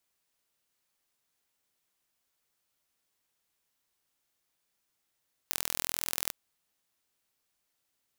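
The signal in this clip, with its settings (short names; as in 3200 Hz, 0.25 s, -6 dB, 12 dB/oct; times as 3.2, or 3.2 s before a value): pulse train 41.7/s, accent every 2, -2 dBFS 0.81 s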